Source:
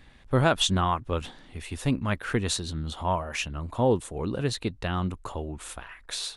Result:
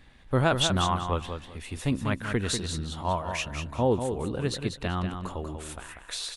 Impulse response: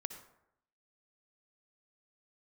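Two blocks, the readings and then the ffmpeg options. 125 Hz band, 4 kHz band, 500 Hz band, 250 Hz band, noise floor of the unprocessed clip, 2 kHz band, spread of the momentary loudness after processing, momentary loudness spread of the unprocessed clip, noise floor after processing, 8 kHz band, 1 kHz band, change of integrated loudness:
-0.5 dB, -0.5 dB, -0.5 dB, -1.0 dB, -53 dBFS, -1.0 dB, 14 LU, 14 LU, -50 dBFS, -0.5 dB, -0.5 dB, -1.0 dB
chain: -af "aecho=1:1:192|384|576:0.447|0.103|0.0236,volume=-1.5dB"

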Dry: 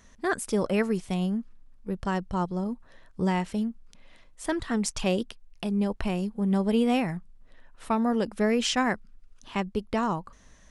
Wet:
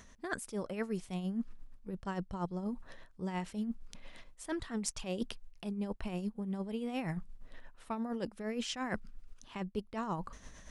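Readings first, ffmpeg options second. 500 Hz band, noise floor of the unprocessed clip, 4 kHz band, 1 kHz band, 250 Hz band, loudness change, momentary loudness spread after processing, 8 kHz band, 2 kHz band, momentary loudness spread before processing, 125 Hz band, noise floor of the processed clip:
-12.0 dB, -55 dBFS, -11.0 dB, -11.5 dB, -11.0 dB, -11.0 dB, 12 LU, -8.0 dB, -11.0 dB, 11 LU, -9.5 dB, -59 dBFS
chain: -af "areverse,acompressor=threshold=-37dB:ratio=12,areverse,tremolo=f=8.6:d=0.52,volume=5dB"

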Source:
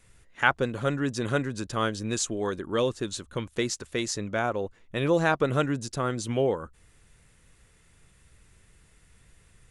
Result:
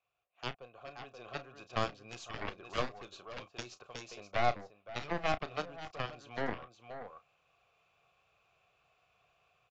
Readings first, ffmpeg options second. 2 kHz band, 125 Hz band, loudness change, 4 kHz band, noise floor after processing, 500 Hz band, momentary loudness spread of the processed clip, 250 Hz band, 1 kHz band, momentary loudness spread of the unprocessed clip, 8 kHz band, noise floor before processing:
-11.5 dB, -15.0 dB, -11.5 dB, -9.0 dB, -75 dBFS, -12.5 dB, 15 LU, -17.0 dB, -7.0 dB, 9 LU, -20.5 dB, -61 dBFS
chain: -filter_complex "[0:a]equalizer=f=125:t=o:w=1:g=4,equalizer=f=250:t=o:w=1:g=-9,equalizer=f=4k:t=o:w=1:g=3,aecho=1:1:529:0.335,dynaudnorm=f=340:g=5:m=13dB,asplit=3[a][b][c];[a]bandpass=f=730:t=q:w=8,volume=0dB[d];[b]bandpass=f=1.09k:t=q:w=8,volume=-6dB[e];[c]bandpass=f=2.44k:t=q:w=8,volume=-9dB[f];[d][e][f]amix=inputs=3:normalize=0,aeval=exprs='0.2*(cos(1*acos(clip(val(0)/0.2,-1,1)))-cos(1*PI/2))+0.0447*(cos(3*acos(clip(val(0)/0.2,-1,1)))-cos(3*PI/2))+0.0158*(cos(4*acos(clip(val(0)/0.2,-1,1)))-cos(4*PI/2))+0.00501*(cos(5*acos(clip(val(0)/0.2,-1,1)))-cos(5*PI/2))+0.0224*(cos(7*acos(clip(val(0)/0.2,-1,1)))-cos(7*PI/2))':c=same,acrossover=split=360[g][h];[h]acompressor=threshold=-47dB:ratio=1.5[i];[g][i]amix=inputs=2:normalize=0,asplit=2[j][k];[k]adelay=33,volume=-13.5dB[l];[j][l]amix=inputs=2:normalize=0,aresample=16000,aresample=44100,volume=3.5dB"

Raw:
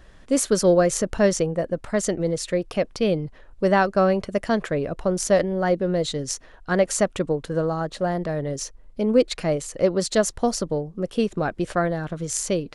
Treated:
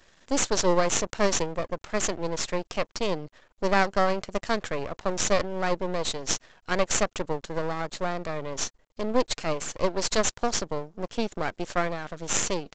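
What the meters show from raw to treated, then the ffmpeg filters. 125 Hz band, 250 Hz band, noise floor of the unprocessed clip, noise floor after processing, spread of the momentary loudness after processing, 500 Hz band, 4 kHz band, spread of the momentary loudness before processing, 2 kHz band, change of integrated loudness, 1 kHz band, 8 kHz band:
-8.5 dB, -8.0 dB, -48 dBFS, -68 dBFS, 9 LU, -6.5 dB, +1.5 dB, 8 LU, -1.0 dB, -5.0 dB, -1.0 dB, 0.0 dB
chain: -af "aemphasis=mode=production:type=bsi,aresample=16000,aeval=exprs='max(val(0),0)':c=same,aresample=44100"

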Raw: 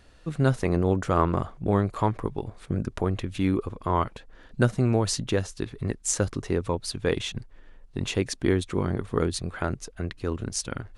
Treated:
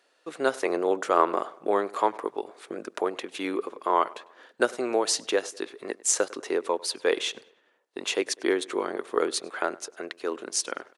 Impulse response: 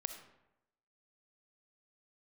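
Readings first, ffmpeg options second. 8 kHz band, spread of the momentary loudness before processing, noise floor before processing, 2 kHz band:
+3.0 dB, 10 LU, -52 dBFS, +3.0 dB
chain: -filter_complex "[0:a]highpass=f=370:w=0.5412,highpass=f=370:w=1.3066,agate=range=-9dB:threshold=-57dB:ratio=16:detection=peak,asplit=2[a][b];[b]adelay=100,lowpass=f=3.5k:p=1,volume=-21.5dB,asplit=2[c][d];[d]adelay=100,lowpass=f=3.5k:p=1,volume=0.51,asplit=2[e][f];[f]adelay=100,lowpass=f=3.5k:p=1,volume=0.51,asplit=2[g][h];[h]adelay=100,lowpass=f=3.5k:p=1,volume=0.51[i];[a][c][e][g][i]amix=inputs=5:normalize=0,volume=3dB"

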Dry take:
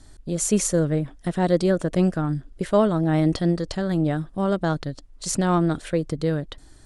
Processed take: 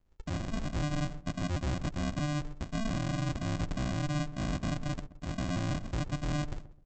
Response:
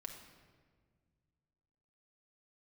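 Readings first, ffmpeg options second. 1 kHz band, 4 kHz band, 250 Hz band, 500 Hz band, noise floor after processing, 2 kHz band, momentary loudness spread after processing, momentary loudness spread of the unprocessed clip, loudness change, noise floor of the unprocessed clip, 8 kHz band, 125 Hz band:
-11.0 dB, -6.0 dB, -12.5 dB, -18.5 dB, -56 dBFS, -6.0 dB, 5 LU, 9 LU, -11.5 dB, -49 dBFS, -17.5 dB, -7.5 dB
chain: -filter_complex "[0:a]agate=range=-30dB:threshold=-41dB:ratio=16:detection=peak,equalizer=f=200:t=o:w=0.74:g=-6,areverse,acompressor=threshold=-31dB:ratio=12,areverse,asoftclip=type=tanh:threshold=-35dB,aresample=16000,acrusher=samples=36:mix=1:aa=0.000001,aresample=44100,asplit=2[a][b];[b]adelay=129,lowpass=f=890:p=1,volume=-13.5dB,asplit=2[c][d];[d]adelay=129,lowpass=f=890:p=1,volume=0.3,asplit=2[e][f];[f]adelay=129,lowpass=f=890:p=1,volume=0.3[g];[a][c][e][g]amix=inputs=4:normalize=0,volume=7dB"

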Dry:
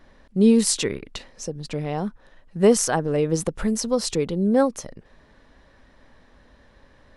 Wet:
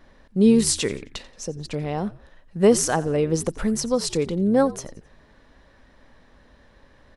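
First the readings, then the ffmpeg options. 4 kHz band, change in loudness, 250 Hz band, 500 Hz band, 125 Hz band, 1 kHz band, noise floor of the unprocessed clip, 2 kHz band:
0.0 dB, 0.0 dB, 0.0 dB, 0.0 dB, +0.5 dB, 0.0 dB, -56 dBFS, 0.0 dB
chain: -filter_complex "[0:a]asplit=4[a][b][c][d];[b]adelay=88,afreqshift=-74,volume=-19dB[e];[c]adelay=176,afreqshift=-148,volume=-27.4dB[f];[d]adelay=264,afreqshift=-222,volume=-35.8dB[g];[a][e][f][g]amix=inputs=4:normalize=0"

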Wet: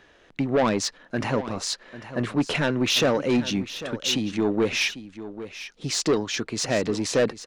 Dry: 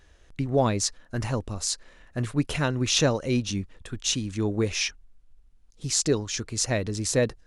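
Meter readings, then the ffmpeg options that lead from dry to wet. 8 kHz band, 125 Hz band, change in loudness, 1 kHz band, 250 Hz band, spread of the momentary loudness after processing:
-3.0 dB, -4.0 dB, +1.5 dB, +3.5 dB, +3.5 dB, 13 LU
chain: -filter_complex "[0:a]acrossover=split=160 4400:gain=0.0891 1 0.178[a][b][c];[a][b][c]amix=inputs=3:normalize=0,acontrast=37,asoftclip=type=tanh:threshold=-18dB,asplit=2[d][e];[e]aecho=0:1:797:0.211[f];[d][f]amix=inputs=2:normalize=0,volume=2.5dB"

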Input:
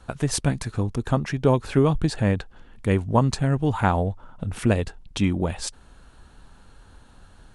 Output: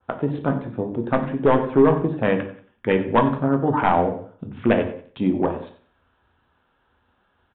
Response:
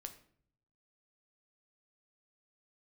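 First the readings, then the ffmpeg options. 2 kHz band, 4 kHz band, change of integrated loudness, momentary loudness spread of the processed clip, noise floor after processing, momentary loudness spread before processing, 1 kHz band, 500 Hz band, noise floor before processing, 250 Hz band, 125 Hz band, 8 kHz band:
+3.0 dB, -6.0 dB, +2.5 dB, 11 LU, -67 dBFS, 9 LU, +5.5 dB, +5.5 dB, -51 dBFS, +3.0 dB, -5.0 dB, under -40 dB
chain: -filter_complex "[0:a]afwtdn=0.0282,highpass=230,tiltshelf=f=1.2k:g=4,bandreject=f=50:t=h:w=6,bandreject=f=100:t=h:w=6,bandreject=f=150:t=h:w=6,bandreject=f=200:t=h:w=6,bandreject=f=250:t=h:w=6,bandreject=f=300:t=h:w=6,acrossover=split=910[a][b];[b]acontrast=87[c];[a][c]amix=inputs=2:normalize=0,volume=12dB,asoftclip=hard,volume=-12dB,aecho=1:1:92|184|276:0.158|0.0523|0.0173[d];[1:a]atrim=start_sample=2205,afade=t=out:st=0.22:d=0.01,atrim=end_sample=10143,asetrate=38367,aresample=44100[e];[d][e]afir=irnorm=-1:irlink=0,aresample=8000,aresample=44100,adynamicequalizer=threshold=0.01:dfrequency=1600:dqfactor=0.7:tfrequency=1600:tqfactor=0.7:attack=5:release=100:ratio=0.375:range=3:mode=cutabove:tftype=highshelf,volume=6.5dB"

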